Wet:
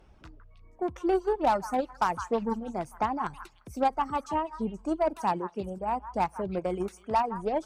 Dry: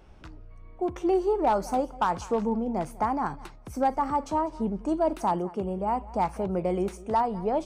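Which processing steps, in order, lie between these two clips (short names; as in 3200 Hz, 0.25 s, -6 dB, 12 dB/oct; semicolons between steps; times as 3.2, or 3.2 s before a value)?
added harmonics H 3 -19 dB, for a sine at -16 dBFS; delay with a stepping band-pass 0.159 s, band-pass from 1300 Hz, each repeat 1.4 oct, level -5 dB; reverb removal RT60 0.95 s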